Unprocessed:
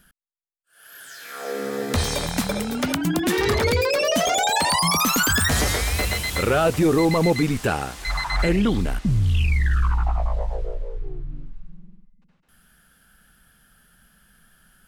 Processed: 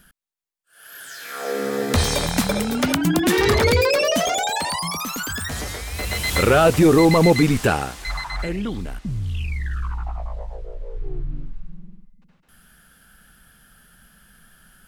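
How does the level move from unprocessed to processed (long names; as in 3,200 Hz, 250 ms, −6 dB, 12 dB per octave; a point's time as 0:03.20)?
0:03.87 +3.5 dB
0:05.06 −8 dB
0:05.88 −8 dB
0:06.32 +4.5 dB
0:07.64 +4.5 dB
0:08.48 −6.5 dB
0:10.66 −6.5 dB
0:11.17 +4.5 dB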